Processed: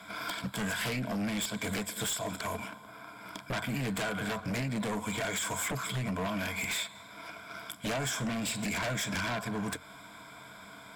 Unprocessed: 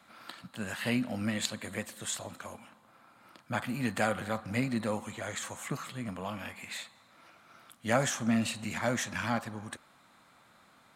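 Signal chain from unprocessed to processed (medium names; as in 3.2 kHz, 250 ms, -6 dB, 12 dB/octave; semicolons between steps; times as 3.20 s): rippled EQ curve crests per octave 1.7, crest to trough 13 dB; waveshaping leveller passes 1; compression 8:1, threshold -38 dBFS, peak gain reduction 19.5 dB; sine folder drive 15 dB, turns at -22 dBFS; trim -7 dB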